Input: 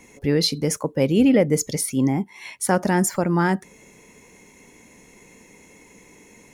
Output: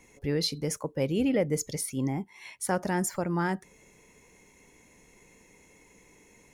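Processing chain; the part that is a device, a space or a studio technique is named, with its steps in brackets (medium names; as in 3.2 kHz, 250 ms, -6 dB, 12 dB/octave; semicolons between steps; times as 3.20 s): low shelf boost with a cut just above (bass shelf 72 Hz +6.5 dB; peaking EQ 230 Hz -4 dB 0.72 oct); trim -8 dB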